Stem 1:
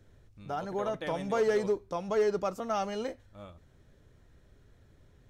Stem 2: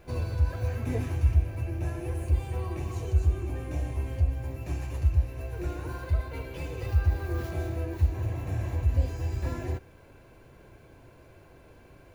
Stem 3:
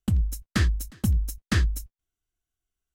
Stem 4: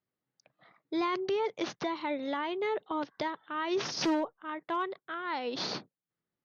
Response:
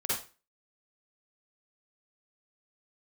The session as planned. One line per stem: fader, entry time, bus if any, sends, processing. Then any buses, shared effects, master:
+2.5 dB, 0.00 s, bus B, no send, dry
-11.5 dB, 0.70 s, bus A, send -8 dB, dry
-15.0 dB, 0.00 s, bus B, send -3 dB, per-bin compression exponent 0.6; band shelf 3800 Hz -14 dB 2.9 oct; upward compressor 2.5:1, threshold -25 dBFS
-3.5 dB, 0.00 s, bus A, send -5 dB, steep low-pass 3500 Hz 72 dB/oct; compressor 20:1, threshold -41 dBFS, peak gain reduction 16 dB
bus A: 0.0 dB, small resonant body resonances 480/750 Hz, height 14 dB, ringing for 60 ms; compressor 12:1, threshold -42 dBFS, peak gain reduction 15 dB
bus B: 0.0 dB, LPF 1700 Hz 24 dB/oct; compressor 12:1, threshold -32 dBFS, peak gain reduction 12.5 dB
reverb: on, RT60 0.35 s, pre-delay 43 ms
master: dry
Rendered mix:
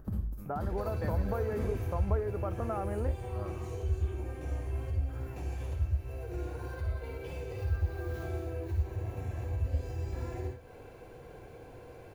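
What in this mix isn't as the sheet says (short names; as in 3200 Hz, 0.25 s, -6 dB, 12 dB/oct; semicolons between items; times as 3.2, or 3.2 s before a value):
stem 2 -11.5 dB -> -0.5 dB; stem 4 -3.5 dB -> -10.5 dB; reverb return -6.0 dB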